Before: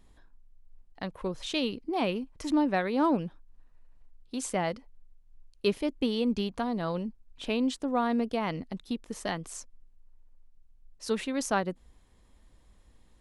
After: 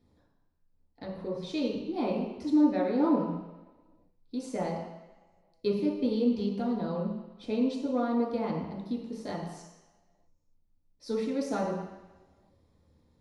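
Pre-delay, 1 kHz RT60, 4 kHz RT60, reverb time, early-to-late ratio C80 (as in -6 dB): 3 ms, 1.2 s, 1.3 s, 1.1 s, 5.5 dB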